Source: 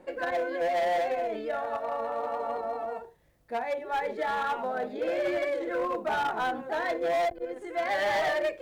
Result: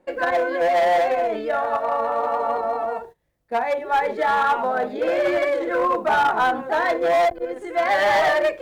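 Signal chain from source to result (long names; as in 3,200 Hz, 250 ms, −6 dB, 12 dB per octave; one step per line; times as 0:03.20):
noise gate −48 dBFS, range −14 dB
dynamic equaliser 1,100 Hz, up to +5 dB, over −41 dBFS, Q 1.3
level +7 dB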